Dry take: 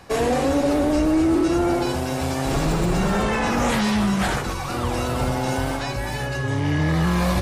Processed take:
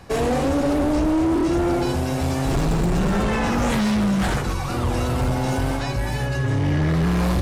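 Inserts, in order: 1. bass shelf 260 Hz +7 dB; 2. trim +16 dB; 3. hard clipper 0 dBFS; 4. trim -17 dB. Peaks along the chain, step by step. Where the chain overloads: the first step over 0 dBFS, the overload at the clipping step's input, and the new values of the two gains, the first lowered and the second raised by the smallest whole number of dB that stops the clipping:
-7.5 dBFS, +8.5 dBFS, 0.0 dBFS, -17.0 dBFS; step 2, 8.5 dB; step 2 +7 dB, step 4 -8 dB

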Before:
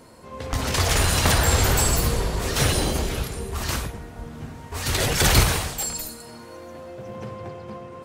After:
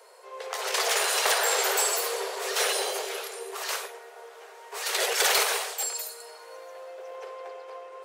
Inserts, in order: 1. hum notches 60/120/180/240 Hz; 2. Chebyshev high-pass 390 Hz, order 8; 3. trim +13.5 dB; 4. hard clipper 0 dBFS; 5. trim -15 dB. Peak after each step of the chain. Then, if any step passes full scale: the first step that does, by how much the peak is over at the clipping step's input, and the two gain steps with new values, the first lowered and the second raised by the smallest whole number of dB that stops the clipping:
-6.0 dBFS, -8.0 dBFS, +5.5 dBFS, 0.0 dBFS, -15.0 dBFS; step 3, 5.5 dB; step 3 +7.5 dB, step 5 -9 dB

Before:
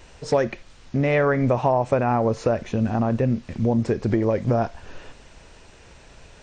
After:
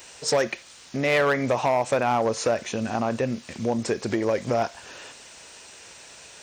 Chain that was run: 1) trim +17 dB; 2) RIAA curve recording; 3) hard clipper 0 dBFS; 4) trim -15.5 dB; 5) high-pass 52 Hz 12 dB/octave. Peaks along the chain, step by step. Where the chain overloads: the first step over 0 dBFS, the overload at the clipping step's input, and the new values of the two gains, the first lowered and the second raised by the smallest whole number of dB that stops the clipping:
+10.0 dBFS, +8.5 dBFS, 0.0 dBFS, -15.5 dBFS, -13.5 dBFS; step 1, 8.5 dB; step 1 +8 dB, step 4 -6.5 dB

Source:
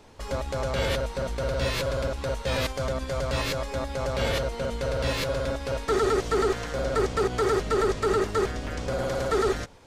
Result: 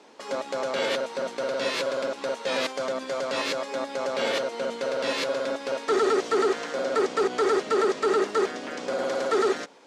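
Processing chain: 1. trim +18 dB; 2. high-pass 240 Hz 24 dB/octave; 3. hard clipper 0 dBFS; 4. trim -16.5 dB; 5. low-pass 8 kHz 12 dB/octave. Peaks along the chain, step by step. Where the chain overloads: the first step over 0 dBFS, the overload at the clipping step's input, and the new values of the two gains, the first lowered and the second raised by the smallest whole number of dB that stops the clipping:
+3.0 dBFS, +3.5 dBFS, 0.0 dBFS, -16.5 dBFS, -16.0 dBFS; step 1, 3.5 dB; step 1 +14 dB, step 4 -12.5 dB

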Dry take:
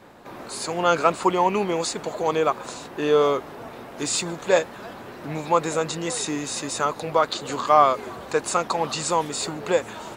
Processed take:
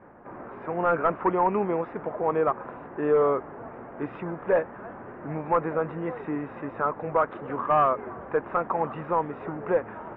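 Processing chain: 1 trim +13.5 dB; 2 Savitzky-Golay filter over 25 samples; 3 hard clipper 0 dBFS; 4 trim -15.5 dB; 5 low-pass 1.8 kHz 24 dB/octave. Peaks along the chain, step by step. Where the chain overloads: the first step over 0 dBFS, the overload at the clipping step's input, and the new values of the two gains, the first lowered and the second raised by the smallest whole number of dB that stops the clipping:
+10.0 dBFS, +10.0 dBFS, 0.0 dBFS, -15.5 dBFS, -14.0 dBFS; step 1, 10.0 dB; step 1 +3.5 dB, step 4 -5.5 dB

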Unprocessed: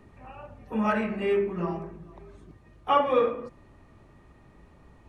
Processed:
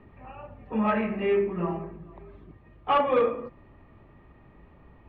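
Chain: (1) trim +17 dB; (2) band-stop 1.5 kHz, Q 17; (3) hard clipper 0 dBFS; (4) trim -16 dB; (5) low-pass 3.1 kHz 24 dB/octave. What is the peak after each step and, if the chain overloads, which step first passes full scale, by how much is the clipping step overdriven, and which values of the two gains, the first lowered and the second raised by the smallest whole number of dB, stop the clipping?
+7.0 dBFS, +7.0 dBFS, 0.0 dBFS, -16.0 dBFS, -15.0 dBFS; step 1, 7.0 dB; step 1 +10 dB, step 4 -9 dB

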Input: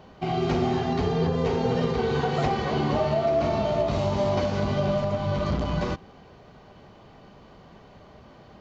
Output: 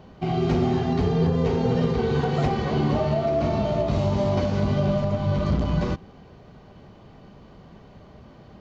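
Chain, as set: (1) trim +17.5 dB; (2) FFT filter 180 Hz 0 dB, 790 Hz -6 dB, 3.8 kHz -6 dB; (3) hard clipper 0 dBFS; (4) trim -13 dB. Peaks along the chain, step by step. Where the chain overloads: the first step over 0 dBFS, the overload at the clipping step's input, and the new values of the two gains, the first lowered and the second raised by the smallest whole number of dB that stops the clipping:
+5.5 dBFS, +3.5 dBFS, 0.0 dBFS, -13.0 dBFS; step 1, 3.5 dB; step 1 +13.5 dB, step 4 -9 dB

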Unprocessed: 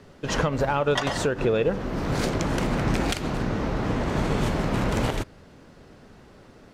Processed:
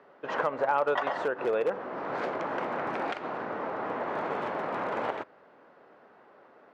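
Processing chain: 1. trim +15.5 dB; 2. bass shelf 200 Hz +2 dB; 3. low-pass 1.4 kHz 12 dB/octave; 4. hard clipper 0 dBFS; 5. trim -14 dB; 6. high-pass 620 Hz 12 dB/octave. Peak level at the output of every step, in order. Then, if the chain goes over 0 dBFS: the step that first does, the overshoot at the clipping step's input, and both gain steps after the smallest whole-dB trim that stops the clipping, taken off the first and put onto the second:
+3.0 dBFS, +3.5 dBFS, +3.5 dBFS, 0.0 dBFS, -14.0 dBFS, -14.0 dBFS; step 1, 3.5 dB; step 1 +11.5 dB, step 5 -10 dB

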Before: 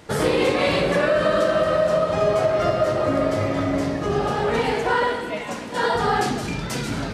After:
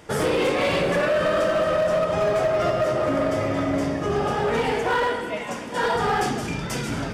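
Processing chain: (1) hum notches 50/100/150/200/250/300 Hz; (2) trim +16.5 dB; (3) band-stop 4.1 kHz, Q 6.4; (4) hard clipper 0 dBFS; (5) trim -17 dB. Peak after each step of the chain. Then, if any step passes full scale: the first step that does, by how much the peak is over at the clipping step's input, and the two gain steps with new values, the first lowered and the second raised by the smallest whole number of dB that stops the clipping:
-8.5 dBFS, +8.0 dBFS, +8.0 dBFS, 0.0 dBFS, -17.0 dBFS; step 2, 8.0 dB; step 2 +8.5 dB, step 5 -9 dB

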